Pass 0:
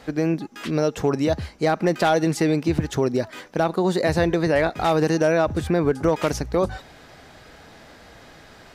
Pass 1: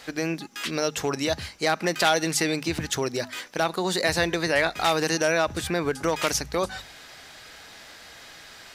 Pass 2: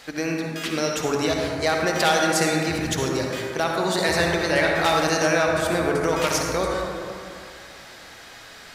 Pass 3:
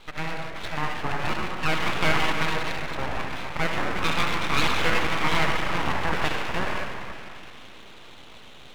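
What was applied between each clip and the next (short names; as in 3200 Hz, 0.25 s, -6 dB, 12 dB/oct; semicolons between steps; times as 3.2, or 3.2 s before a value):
tilt shelf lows -8 dB, about 1200 Hz; notches 50/100/150/200/250 Hz
reverb RT60 2.5 s, pre-delay 47 ms, DRR -0.5 dB
brick-wall FIR low-pass 2400 Hz; low shelf 400 Hz -9.5 dB; full-wave rectifier; gain +3 dB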